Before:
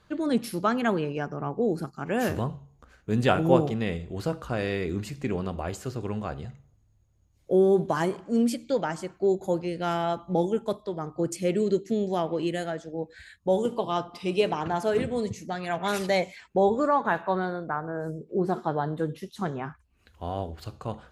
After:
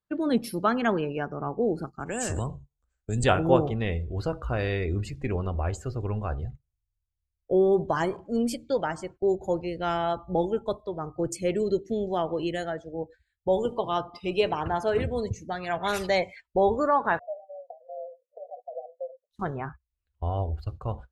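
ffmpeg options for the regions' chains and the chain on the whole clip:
-filter_complex "[0:a]asettb=1/sr,asplit=3[s0][s1][s2];[s0]atrim=end=2.004[s3];[s1]atrim=start=2:end=3.24,asetpts=PTS-STARTPTS,afade=t=in:d=0.004:c=qsin,afade=t=out:st=1.236:d=0.004:c=qsin,acrossover=split=140|3000[s4][s5][s6];[s5]acompressor=threshold=0.0398:ratio=6:attack=3.2:release=140:knee=2.83:detection=peak[s7];[s4][s7][s6]amix=inputs=3:normalize=0,lowpass=f=7900:t=q:w=10[s8];[s2]atrim=start=3.236[s9];[s3][s8]acrossfade=d=0.004:c1=hsin:c2=qsin[s10];[s10][s9]acrossfade=d=0.004:c1=qsin:c2=hsin,asettb=1/sr,asplit=3[s11][s12][s13];[s11]atrim=end=17.194[s14];[s12]atrim=start=17.19:end=19.31,asetpts=PTS-STARTPTS,afade=t=in:d=0.004:c=qsin,afade=t=out:st=2.116:d=0.004:c=qsin,aeval=exprs='clip(val(0),-1,0.0237)':c=same,afreqshift=43,asuperpass=centerf=600:order=12:qfactor=2.5[s15];[s13]atrim=start=19.306[s16];[s14][s15]acrossfade=d=0.004:c1=hsin:c2=qsin[s17];[s17][s16]acrossfade=d=0.004:c1=qsin:c2=hsin,agate=range=0.178:threshold=0.00708:ratio=16:detection=peak,afftdn=nr=16:nf=-45,asubboost=boost=10:cutoff=59,volume=1.12"

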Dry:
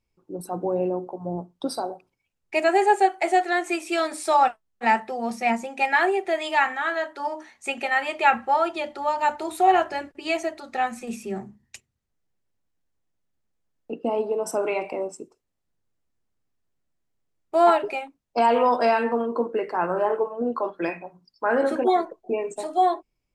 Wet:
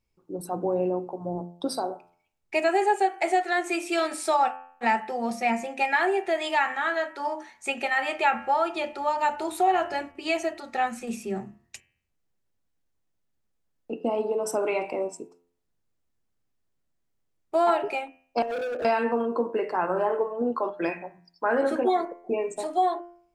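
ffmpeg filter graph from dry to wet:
-filter_complex "[0:a]asettb=1/sr,asplit=3[s0][s1][s2];[s0]atrim=end=18.424[s3];[s1]atrim=start=18.42:end=18.85,asetpts=PTS-STARTPTS,afade=t=in:d=0.004:c=qsin,afade=t=out:st=0.426:d=0.004:c=qsin,asuperpass=centerf=410:order=12:qfactor=1.1,volume=26.6,asoftclip=hard,volume=0.0376[s4];[s2]atrim=start=18.846[s5];[s3][s4]acrossfade=d=0.004:c1=hsin:c2=qsin[s6];[s6][s5]acrossfade=d=0.004:c1=qsin:c2=hsin,bandreject=f=86.87:t=h:w=4,bandreject=f=173.74:t=h:w=4,bandreject=f=260.61:t=h:w=4,bandreject=f=347.48:t=h:w=4,bandreject=f=434.35:t=h:w=4,bandreject=f=521.22:t=h:w=4,bandreject=f=608.09:t=h:w=4,bandreject=f=694.96:t=h:w=4,bandreject=f=781.83:t=h:w=4,bandreject=f=868.7:t=h:w=4,bandreject=f=955.57:t=h:w=4,bandreject=f=1042.44:t=h:w=4,bandreject=f=1129.31:t=h:w=4,bandreject=f=1216.18:t=h:w=4,bandreject=f=1303.05:t=h:w=4,bandreject=f=1389.92:t=h:w=4,bandreject=f=1476.79:t=h:w=4,bandreject=f=1563.66:t=h:w=4,bandreject=f=1650.53:t=h:w=4,bandreject=f=1737.4:t=h:w=4,bandreject=f=1824.27:t=h:w=4,bandreject=f=1911.14:t=h:w=4,bandreject=f=1998.01:t=h:w=4,bandreject=f=2084.88:t=h:w=4,bandreject=f=2171.75:t=h:w=4,bandreject=f=2258.62:t=h:w=4,bandreject=f=2345.49:t=h:w=4,bandreject=f=2432.36:t=h:w=4,bandreject=f=2519.23:t=h:w=4,bandreject=f=2606.1:t=h:w=4,bandreject=f=2692.97:t=h:w=4,bandreject=f=2779.84:t=h:w=4,bandreject=f=2866.71:t=h:w=4,bandreject=f=2953.58:t=h:w=4,bandreject=f=3040.45:t=h:w=4,bandreject=f=3127.32:t=h:w=4,acompressor=threshold=0.0891:ratio=2"

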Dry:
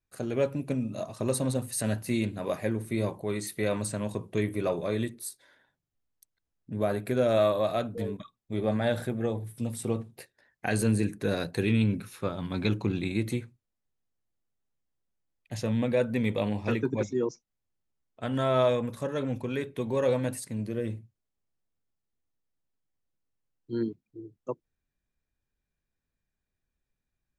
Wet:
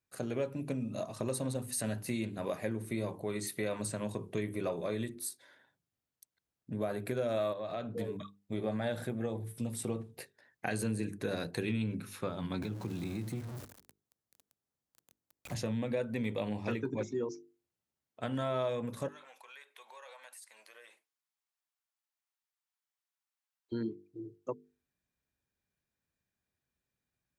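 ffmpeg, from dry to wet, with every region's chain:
-filter_complex "[0:a]asettb=1/sr,asplit=3[s0][s1][s2];[s0]atrim=end=7.534[s3];[s1]atrim=start=7.53:end=7.96,asetpts=PTS-STARTPTS,afade=t=in:d=0.004:c=qsin,afade=t=out:st=0.426:d=0.004:c=qsin,lowpass=5200,acompressor=threshold=0.02:ratio=3:attack=3.2:release=140:knee=1:detection=peak[s4];[s2]atrim=start=7.956[s5];[s3][s4]acrossfade=d=0.004:c1=hsin:c2=qsin[s6];[s6][s5]acrossfade=d=0.004:c1=qsin:c2=hsin,asettb=1/sr,asplit=3[s7][s8][s9];[s7]atrim=end=12.624[s10];[s8]atrim=start=12.62:end=15.55,asetpts=PTS-STARTPTS,afade=t=in:d=0.004:c=qsin,afade=t=out:st=2.926:d=0.004:c=qsin,aeval=exprs='val(0)+0.5*0.02*sgn(val(0))':c=same,equalizer=f=2600:t=o:w=1.3:g=-5,acrossover=split=200|2300[s11][s12][s13];[s11]acompressor=threshold=0.0178:ratio=4[s14];[s12]acompressor=threshold=0.01:ratio=4[s15];[s13]acompressor=threshold=0.00251:ratio=4[s16];[s14][s15][s16]amix=inputs=3:normalize=0[s17];[s9]atrim=start=15.546[s18];[s10][s17]acrossfade=d=0.004:c1=hsin:c2=qsin[s19];[s19][s18]acrossfade=d=0.004:c1=qsin:c2=hsin,asettb=1/sr,asplit=3[s20][s21][s22];[s20]atrim=end=19.084[s23];[s21]atrim=start=19.08:end=23.72,asetpts=PTS-STARTPTS,afade=t=in:d=0.004:c=qsin,afade=t=out:st=4.636:d=0.004:c=qsin,highpass=f=830:w=0.5412,highpass=f=830:w=1.3066,acompressor=threshold=0.00224:ratio=3:attack=3.2:release=140:knee=1:detection=peak[s24];[s22]atrim=start=23.716[s25];[s23][s24]acrossfade=d=0.004:c1=hsin:c2=qsin[s26];[s26][s25]acrossfade=d=0.004:c1=qsin:c2=hsin,highpass=80,bandreject=f=50:t=h:w=6,bandreject=f=100:t=h:w=6,bandreject=f=150:t=h:w=6,bandreject=f=200:t=h:w=6,bandreject=f=250:t=h:w=6,bandreject=f=300:t=h:w=6,bandreject=f=350:t=h:w=6,bandreject=f=400:t=h:w=6,bandreject=f=450:t=h:w=6,acompressor=threshold=0.02:ratio=2.5"

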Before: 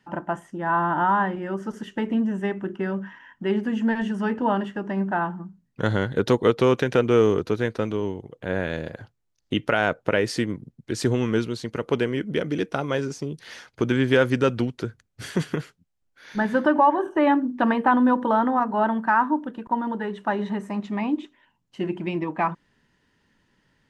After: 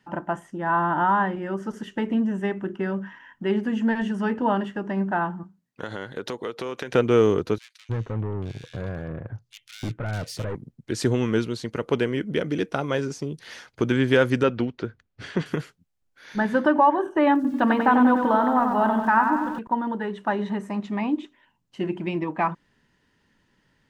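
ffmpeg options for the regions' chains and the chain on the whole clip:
-filter_complex "[0:a]asettb=1/sr,asplit=3[s0][s1][s2];[s0]atrim=end=5.434[s3];[s1]atrim=start=5.43:end=6.93,asetpts=PTS-STARTPTS,afade=t=in:d=0.004:c=qsin,afade=t=out:st=1.496:d=0.004:c=qsin,highpass=f=430:p=1,acompressor=threshold=0.0447:ratio=4:attack=3.2:release=140:knee=1:detection=peak,tremolo=f=94:d=0.182[s4];[s2]atrim=start=6.926[s5];[s3][s4]acrossfade=d=0.004:c1=hsin:c2=qsin[s6];[s6][s5]acrossfade=d=0.004:c1=qsin:c2=hsin,asettb=1/sr,asplit=3[s7][s8][s9];[s7]atrim=end=7.584[s10];[s8]atrim=start=7.58:end=10.55,asetpts=PTS-STARTPTS,afade=t=in:d=0.004:c=qsin,afade=t=out:st=2.966:d=0.004:c=qsin,aeval=exprs='(tanh(31.6*val(0)+0.65)-tanh(0.65))/31.6':c=same,equalizer=f=110:t=o:w=1.1:g=13,acrossover=split=2200[s11][s12];[s11]adelay=310[s13];[s13][s12]amix=inputs=2:normalize=0,atrim=end_sample=130977[s14];[s9]atrim=start=10.546[s15];[s10][s14]acrossfade=d=0.004:c1=hsin:c2=qsin[s16];[s16][s15]acrossfade=d=0.004:c1=qsin:c2=hsin,asettb=1/sr,asplit=3[s17][s18][s19];[s17]atrim=end=14.434[s20];[s18]atrim=start=14.43:end=15.46,asetpts=PTS-STARTPTS,afade=t=in:d=0.004:c=qsin,afade=t=out:st=1.026:d=0.004:c=qsin,lowpass=3700,equalizer=f=130:t=o:w=0.68:g=-4.5[s21];[s19]atrim=start=15.456[s22];[s20][s21]acrossfade=d=0.004:c1=hsin:c2=qsin[s23];[s23][s22]acrossfade=d=0.004:c1=qsin:c2=hsin,asettb=1/sr,asplit=3[s24][s25][s26];[s24]atrim=end=17.354[s27];[s25]atrim=start=17.35:end=19.59,asetpts=PTS-STARTPTS,afade=t=in:d=0.004:c=qsin,afade=t=out:st=2.236:d=0.004:c=qsin,asubboost=boost=3.5:cutoff=150,aeval=exprs='val(0)*gte(abs(val(0)),0.00501)':c=same,aecho=1:1:93|186|279|372|465|558|651|744:0.501|0.291|0.169|0.0978|0.0567|0.0329|0.0191|0.0111,atrim=end_sample=98784[s28];[s26]atrim=start=19.586[s29];[s27][s28]acrossfade=d=0.004:c1=hsin:c2=qsin[s30];[s30][s29]acrossfade=d=0.004:c1=qsin:c2=hsin"

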